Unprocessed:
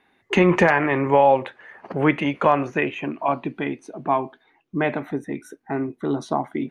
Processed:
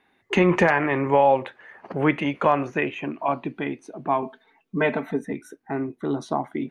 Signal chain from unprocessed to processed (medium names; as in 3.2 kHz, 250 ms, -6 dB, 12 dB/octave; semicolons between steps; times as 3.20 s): 4.22–5.33 s: comb 4.5 ms, depth 94%; trim -2 dB